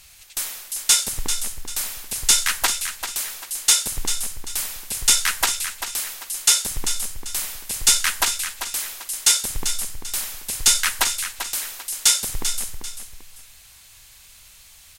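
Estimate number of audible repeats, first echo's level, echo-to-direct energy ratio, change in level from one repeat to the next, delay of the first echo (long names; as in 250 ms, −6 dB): 2, −9.0 dB, −8.5 dB, −9.5 dB, 392 ms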